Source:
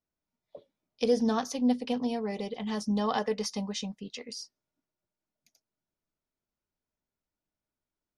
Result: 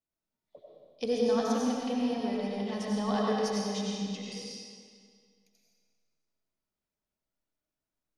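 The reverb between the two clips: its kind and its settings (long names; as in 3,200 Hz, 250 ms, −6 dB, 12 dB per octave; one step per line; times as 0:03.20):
comb and all-pass reverb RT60 2 s, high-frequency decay 0.9×, pre-delay 55 ms, DRR −4 dB
level −5.5 dB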